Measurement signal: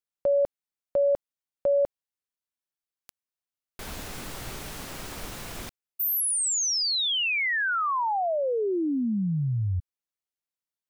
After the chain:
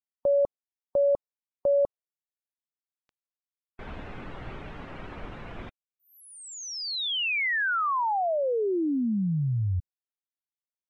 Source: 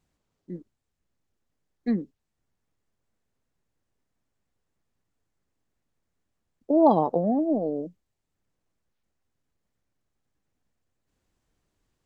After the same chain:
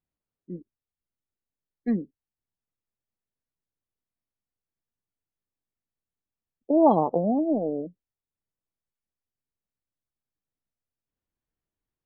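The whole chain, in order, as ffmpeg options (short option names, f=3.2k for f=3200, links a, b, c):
-af "lowpass=3.3k,afftdn=nr=15:nf=-45"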